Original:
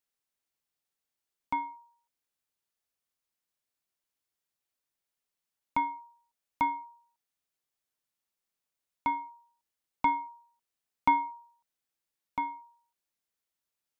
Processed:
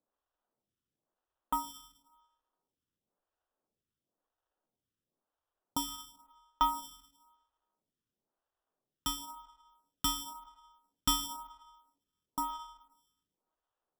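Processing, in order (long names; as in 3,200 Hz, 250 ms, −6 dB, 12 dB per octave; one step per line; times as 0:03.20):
convolution reverb RT60 1.2 s, pre-delay 104 ms, DRR 14 dB
decimation without filtering 20×
in parallel at −11 dB: dead-zone distortion −42 dBFS
on the sum: phaser with staggered stages 0.97 Hz
level −1 dB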